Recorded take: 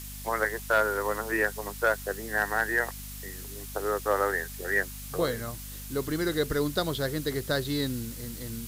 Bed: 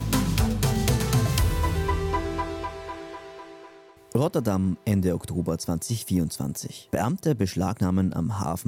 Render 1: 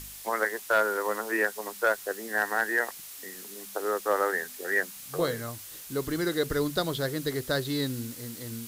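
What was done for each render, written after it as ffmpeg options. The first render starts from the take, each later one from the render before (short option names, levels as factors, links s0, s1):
-af "bandreject=f=50:t=h:w=4,bandreject=f=100:t=h:w=4,bandreject=f=150:t=h:w=4,bandreject=f=200:t=h:w=4,bandreject=f=250:t=h:w=4"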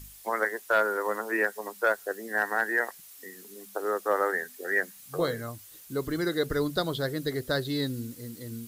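-af "afftdn=nr=9:nf=-44"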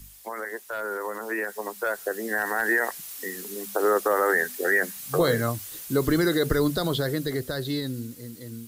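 -filter_complex "[0:a]acrossover=split=100|7100[s0][s1][s2];[s1]alimiter=limit=0.0668:level=0:latency=1:release=35[s3];[s0][s3][s2]amix=inputs=3:normalize=0,dynaudnorm=f=380:g=11:m=3.55"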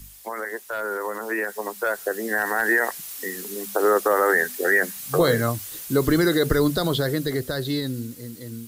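-af "volume=1.41"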